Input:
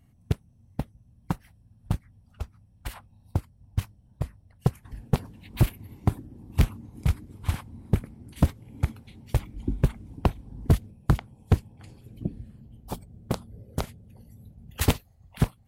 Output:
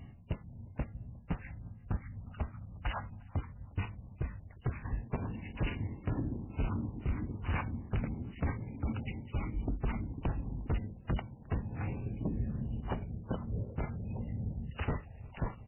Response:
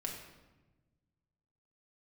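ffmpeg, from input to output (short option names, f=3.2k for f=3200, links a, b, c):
-filter_complex "[0:a]areverse,acompressor=threshold=-33dB:ratio=10,areverse,alimiter=level_in=7.5dB:limit=-24dB:level=0:latency=1:release=250,volume=-7.5dB,aeval=exprs='0.0282*sin(PI/2*1.58*val(0)/0.0282)':c=same,asplit=2[a][b];[b]adelay=356,lowpass=f=2.5k:p=1,volume=-23.5dB,asplit=2[c][d];[d]adelay=356,lowpass=f=2.5k:p=1,volume=0.51,asplit=2[e][f];[f]adelay=356,lowpass=f=2.5k:p=1,volume=0.51[g];[a][c][e][g]amix=inputs=4:normalize=0,volume=4.5dB" -ar 8000 -c:a libmp3lame -b:a 8k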